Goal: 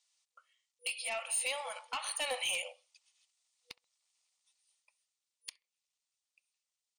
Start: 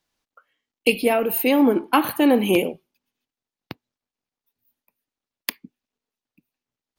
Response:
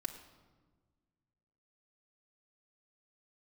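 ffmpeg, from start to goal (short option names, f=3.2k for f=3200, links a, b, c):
-filter_complex "[0:a]aderivative,dynaudnorm=f=520:g=5:m=15.5dB,afftfilt=real='re*between(b*sr/4096,490,9700)':imag='im*between(b*sr/4096,490,9700)':win_size=4096:overlap=0.75,asplit=2[a][b];[b]acompressor=threshold=-44dB:ratio=6,volume=1dB[c];[a][c]amix=inputs=2:normalize=0,alimiter=limit=-20dB:level=0:latency=1:release=403,asplit=2[d][e];[e]adelay=66,lowpass=f=1.5k:p=1,volume=-23dB,asplit=2[f][g];[g]adelay=66,lowpass=f=1.5k:p=1,volume=0.37[h];[f][h]amix=inputs=2:normalize=0[i];[d][i]amix=inputs=2:normalize=0,asoftclip=type=tanh:threshold=-27dB,bandreject=f=1.6k:w=5.7"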